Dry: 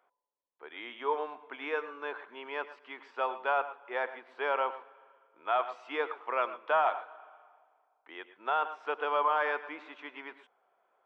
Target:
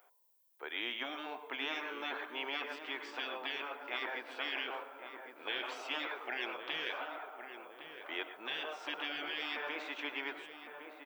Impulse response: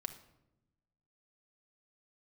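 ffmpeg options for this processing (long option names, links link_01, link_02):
-filter_complex "[0:a]aemphasis=mode=production:type=bsi,afftfilt=real='re*lt(hypot(re,im),0.0398)':imag='im*lt(hypot(re,im),0.0398)':win_size=1024:overlap=0.75,equalizer=frequency=1100:width_type=o:width=0.56:gain=-4.5,asplit=2[link_01][link_02];[link_02]adelay=1110,lowpass=frequency=1500:poles=1,volume=-7.5dB,asplit=2[link_03][link_04];[link_04]adelay=1110,lowpass=frequency=1500:poles=1,volume=0.54,asplit=2[link_05][link_06];[link_06]adelay=1110,lowpass=frequency=1500:poles=1,volume=0.54,asplit=2[link_07][link_08];[link_08]adelay=1110,lowpass=frequency=1500:poles=1,volume=0.54,asplit=2[link_09][link_10];[link_10]adelay=1110,lowpass=frequency=1500:poles=1,volume=0.54,asplit=2[link_11][link_12];[link_12]adelay=1110,lowpass=frequency=1500:poles=1,volume=0.54,asplit=2[link_13][link_14];[link_14]adelay=1110,lowpass=frequency=1500:poles=1,volume=0.54[link_15];[link_01][link_03][link_05][link_07][link_09][link_11][link_13][link_15]amix=inputs=8:normalize=0,volume=6dB"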